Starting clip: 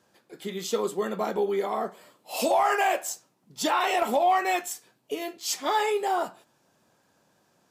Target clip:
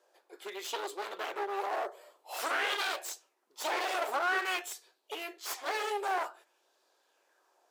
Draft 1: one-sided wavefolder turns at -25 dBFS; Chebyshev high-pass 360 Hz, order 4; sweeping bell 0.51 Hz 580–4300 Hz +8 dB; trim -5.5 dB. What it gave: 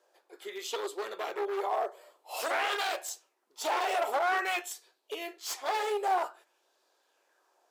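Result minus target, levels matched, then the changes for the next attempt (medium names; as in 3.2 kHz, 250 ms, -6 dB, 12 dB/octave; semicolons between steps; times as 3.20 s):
one-sided wavefolder: distortion -9 dB
change: one-sided wavefolder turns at -32 dBFS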